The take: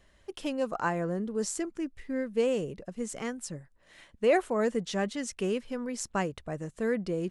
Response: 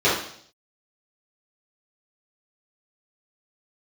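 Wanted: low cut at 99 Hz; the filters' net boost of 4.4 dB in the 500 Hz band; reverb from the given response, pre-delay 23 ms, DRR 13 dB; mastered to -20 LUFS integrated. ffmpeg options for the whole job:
-filter_complex "[0:a]highpass=99,equalizer=f=500:t=o:g=5,asplit=2[a][b];[1:a]atrim=start_sample=2205,adelay=23[c];[b][c]afir=irnorm=-1:irlink=0,volume=-33dB[d];[a][d]amix=inputs=2:normalize=0,volume=8dB"

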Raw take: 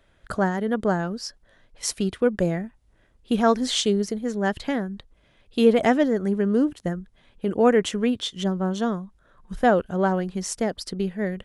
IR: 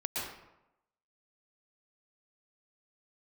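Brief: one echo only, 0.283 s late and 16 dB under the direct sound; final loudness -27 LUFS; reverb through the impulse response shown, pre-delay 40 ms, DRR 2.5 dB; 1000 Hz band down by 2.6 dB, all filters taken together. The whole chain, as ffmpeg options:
-filter_complex "[0:a]equalizer=f=1k:t=o:g=-4,aecho=1:1:283:0.158,asplit=2[a][b];[1:a]atrim=start_sample=2205,adelay=40[c];[b][c]afir=irnorm=-1:irlink=0,volume=-7dB[d];[a][d]amix=inputs=2:normalize=0,volume=-4.5dB"

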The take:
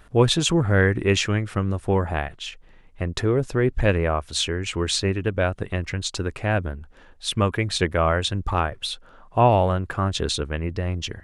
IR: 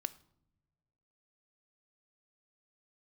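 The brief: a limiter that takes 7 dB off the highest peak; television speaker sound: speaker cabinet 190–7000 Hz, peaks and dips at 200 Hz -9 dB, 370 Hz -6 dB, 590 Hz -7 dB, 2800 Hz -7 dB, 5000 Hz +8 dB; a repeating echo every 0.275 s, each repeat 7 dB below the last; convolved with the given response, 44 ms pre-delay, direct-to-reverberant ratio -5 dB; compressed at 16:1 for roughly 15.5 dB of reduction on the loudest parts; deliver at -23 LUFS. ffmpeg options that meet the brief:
-filter_complex "[0:a]acompressor=threshold=-27dB:ratio=16,alimiter=limit=-23dB:level=0:latency=1,aecho=1:1:275|550|825|1100|1375:0.447|0.201|0.0905|0.0407|0.0183,asplit=2[a][b];[1:a]atrim=start_sample=2205,adelay=44[c];[b][c]afir=irnorm=-1:irlink=0,volume=6dB[d];[a][d]amix=inputs=2:normalize=0,highpass=f=190:w=0.5412,highpass=f=190:w=1.3066,equalizer=f=200:t=q:w=4:g=-9,equalizer=f=370:t=q:w=4:g=-6,equalizer=f=590:t=q:w=4:g=-7,equalizer=f=2.8k:t=q:w=4:g=-7,equalizer=f=5k:t=q:w=4:g=8,lowpass=f=7k:w=0.5412,lowpass=f=7k:w=1.3066,volume=7dB"

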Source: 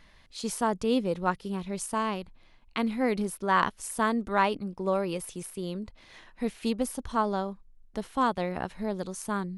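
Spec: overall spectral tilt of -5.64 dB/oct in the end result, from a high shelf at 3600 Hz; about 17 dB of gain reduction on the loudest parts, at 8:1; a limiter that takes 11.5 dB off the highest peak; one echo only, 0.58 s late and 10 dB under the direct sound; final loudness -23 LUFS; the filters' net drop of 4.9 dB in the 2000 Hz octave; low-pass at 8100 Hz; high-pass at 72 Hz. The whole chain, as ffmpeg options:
-af "highpass=72,lowpass=8.1k,equalizer=f=2k:t=o:g=-4.5,highshelf=f=3.6k:g=-9,acompressor=threshold=-40dB:ratio=8,alimiter=level_in=11.5dB:limit=-24dB:level=0:latency=1,volume=-11.5dB,aecho=1:1:580:0.316,volume=23.5dB"

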